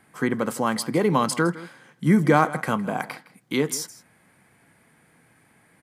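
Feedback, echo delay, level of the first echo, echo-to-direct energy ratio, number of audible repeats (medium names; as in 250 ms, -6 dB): no regular repeats, 161 ms, -18.0 dB, -18.0 dB, 1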